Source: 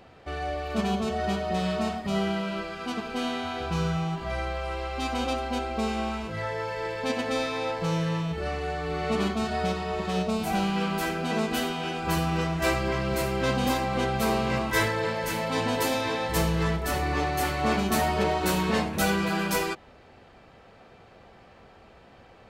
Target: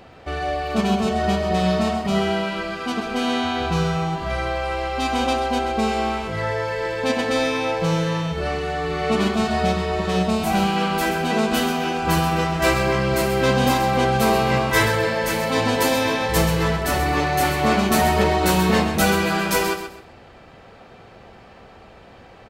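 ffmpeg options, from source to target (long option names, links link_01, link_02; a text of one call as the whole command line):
ffmpeg -i in.wav -af "aecho=1:1:130|260|390:0.355|0.0993|0.0278,volume=6.5dB" out.wav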